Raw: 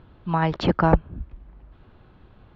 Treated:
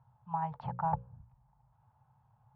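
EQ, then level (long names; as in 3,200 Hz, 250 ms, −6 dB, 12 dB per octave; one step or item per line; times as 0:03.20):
pair of resonant band-passes 330 Hz, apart 2.8 octaves
mains-hum notches 60/120/180/240/300/360/420/480/540 Hz
−3.5 dB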